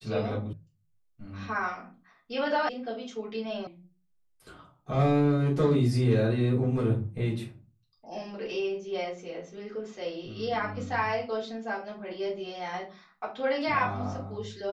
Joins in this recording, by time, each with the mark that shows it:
0.53 s: sound stops dead
2.69 s: sound stops dead
3.67 s: sound stops dead

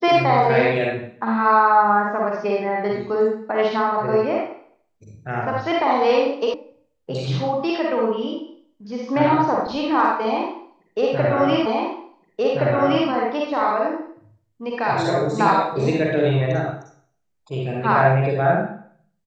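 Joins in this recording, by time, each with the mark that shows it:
6.54 s: sound stops dead
11.66 s: repeat of the last 1.42 s

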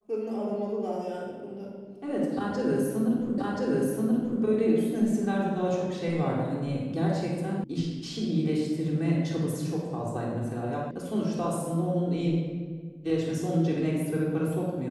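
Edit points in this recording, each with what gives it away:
3.38 s: repeat of the last 1.03 s
7.64 s: sound stops dead
10.91 s: sound stops dead

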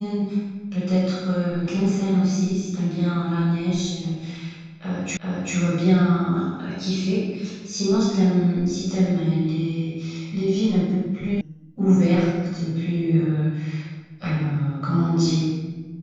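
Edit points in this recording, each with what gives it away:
5.17 s: repeat of the last 0.39 s
11.41 s: sound stops dead

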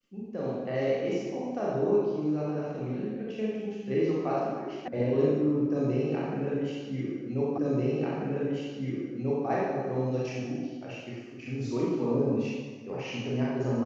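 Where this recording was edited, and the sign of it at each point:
4.88 s: sound stops dead
7.58 s: repeat of the last 1.89 s

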